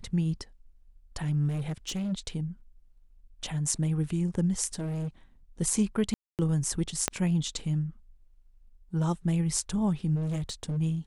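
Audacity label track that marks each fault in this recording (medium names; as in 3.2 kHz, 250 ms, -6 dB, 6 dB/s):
1.480000	2.130000	clipped -28.5 dBFS
4.730000	5.080000	clipped -30 dBFS
6.140000	6.390000	dropout 248 ms
7.080000	7.080000	pop -9 dBFS
10.150000	10.780000	clipped -28 dBFS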